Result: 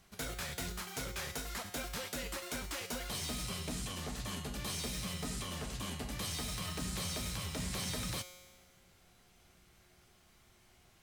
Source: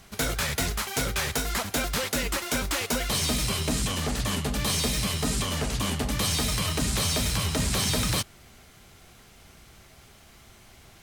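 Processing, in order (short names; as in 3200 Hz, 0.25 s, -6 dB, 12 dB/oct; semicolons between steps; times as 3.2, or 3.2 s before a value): resonator 180 Hz, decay 1.4 s, mix 80%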